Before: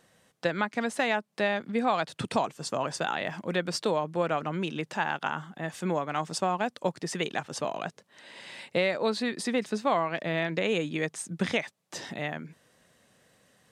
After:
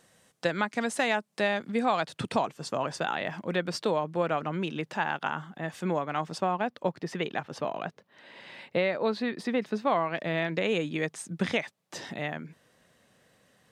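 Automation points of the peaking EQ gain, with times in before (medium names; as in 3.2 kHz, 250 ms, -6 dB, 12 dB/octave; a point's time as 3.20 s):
peaking EQ 8.4 kHz 1.4 oct
1.72 s +4.5 dB
2.43 s -5.5 dB
5.98 s -5.5 dB
6.63 s -15 dB
9.67 s -15 dB
10.24 s -3.5 dB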